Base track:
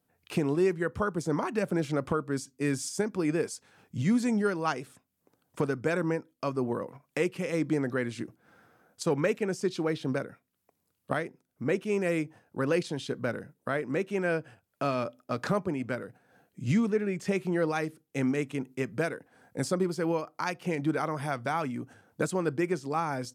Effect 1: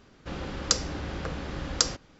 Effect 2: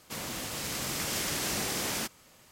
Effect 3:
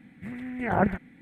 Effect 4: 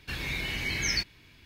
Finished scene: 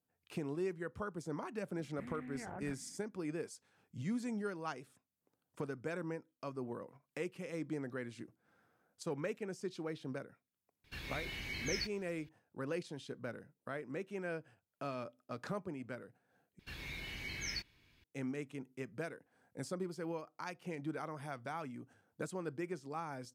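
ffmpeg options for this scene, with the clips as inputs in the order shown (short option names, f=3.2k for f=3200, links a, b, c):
-filter_complex "[4:a]asplit=2[a][b];[0:a]volume=-12.5dB[c];[3:a]acompressor=threshold=-34dB:ratio=6:attack=8.3:release=49:knee=1:detection=rms[d];[c]asplit=2[e][f];[e]atrim=end=16.594[g];[b]atrim=end=1.45,asetpts=PTS-STARTPTS,volume=-12.5dB[h];[f]atrim=start=18.036[i];[d]atrim=end=1.21,asetpts=PTS-STARTPTS,volume=-11dB,afade=t=in:d=0.004:c=hsin,afade=t=out:st=1.206:d=0.004:c=hsin,adelay=1760[j];[a]atrim=end=1.45,asetpts=PTS-STARTPTS,volume=-11dB,afade=t=in:d=0.004:c=hsin,afade=t=out:st=1.446:d=0.004:c=hsin,adelay=10840[k];[g][h]acrossfade=d=0.004:c1=hsin:c2=hsin[l];[l][i]acrossfade=d=0.004:c1=hsin:c2=hsin[m];[m][j][k]amix=inputs=3:normalize=0"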